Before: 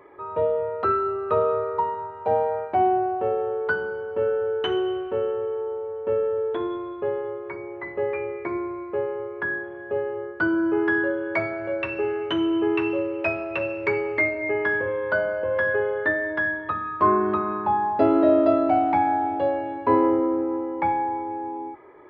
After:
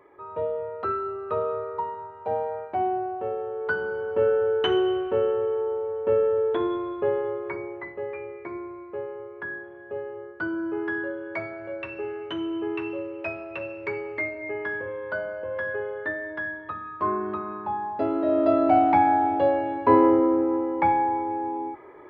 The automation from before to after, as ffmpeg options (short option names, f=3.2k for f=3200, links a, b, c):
-af "volume=11dB,afade=t=in:st=3.53:d=0.55:silence=0.421697,afade=t=out:st=7.57:d=0.41:silence=0.354813,afade=t=in:st=18.24:d=0.53:silence=0.354813"